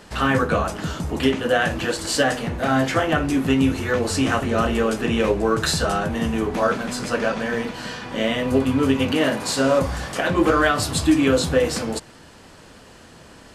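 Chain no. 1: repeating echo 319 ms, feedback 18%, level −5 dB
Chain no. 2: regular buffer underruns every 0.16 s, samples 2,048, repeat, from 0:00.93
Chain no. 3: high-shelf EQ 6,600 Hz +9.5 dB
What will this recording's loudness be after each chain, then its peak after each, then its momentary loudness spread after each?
−20.0, −21.0, −20.5 LKFS; −4.0, −4.0, −3.5 dBFS; 6, 7, 7 LU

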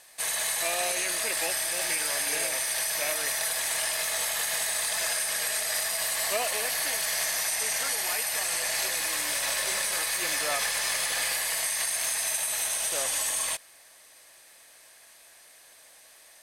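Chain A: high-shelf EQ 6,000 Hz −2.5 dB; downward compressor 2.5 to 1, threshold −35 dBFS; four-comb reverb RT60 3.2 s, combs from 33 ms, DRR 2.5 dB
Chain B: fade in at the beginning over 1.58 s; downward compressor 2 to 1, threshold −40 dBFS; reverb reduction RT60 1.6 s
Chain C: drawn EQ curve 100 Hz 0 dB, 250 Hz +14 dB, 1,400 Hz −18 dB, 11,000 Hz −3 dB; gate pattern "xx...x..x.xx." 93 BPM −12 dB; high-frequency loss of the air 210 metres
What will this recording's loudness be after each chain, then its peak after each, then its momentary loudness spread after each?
−31.0, −37.0, −43.5 LKFS; −19.5, −25.5, −23.0 dBFS; 18, 18, 11 LU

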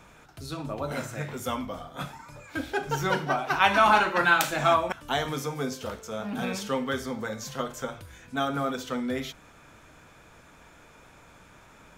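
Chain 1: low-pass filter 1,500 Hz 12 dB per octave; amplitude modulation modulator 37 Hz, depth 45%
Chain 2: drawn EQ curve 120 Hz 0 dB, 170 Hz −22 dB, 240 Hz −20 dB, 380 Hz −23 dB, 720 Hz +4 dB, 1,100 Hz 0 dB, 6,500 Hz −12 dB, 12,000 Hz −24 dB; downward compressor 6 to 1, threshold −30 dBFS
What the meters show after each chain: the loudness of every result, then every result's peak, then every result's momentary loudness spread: −32.0, −37.0 LKFS; −9.0, −20.0 dBFS; 15, 22 LU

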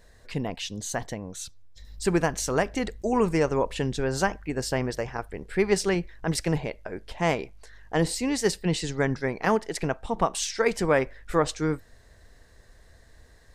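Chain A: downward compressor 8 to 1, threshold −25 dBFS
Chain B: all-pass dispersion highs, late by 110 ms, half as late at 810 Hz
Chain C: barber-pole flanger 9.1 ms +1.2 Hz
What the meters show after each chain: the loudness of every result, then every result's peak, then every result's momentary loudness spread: −32.0, −27.5, −30.5 LKFS; −14.0, −9.0, −11.5 dBFS; 7, 10, 11 LU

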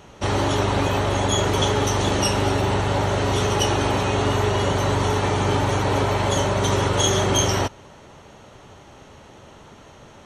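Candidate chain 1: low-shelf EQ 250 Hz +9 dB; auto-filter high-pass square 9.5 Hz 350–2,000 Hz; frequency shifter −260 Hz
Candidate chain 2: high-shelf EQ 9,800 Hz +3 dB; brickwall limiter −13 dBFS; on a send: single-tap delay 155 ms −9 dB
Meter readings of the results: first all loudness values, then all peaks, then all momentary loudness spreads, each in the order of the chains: −20.0, −22.0 LKFS; −3.0, −10.5 dBFS; 3, 1 LU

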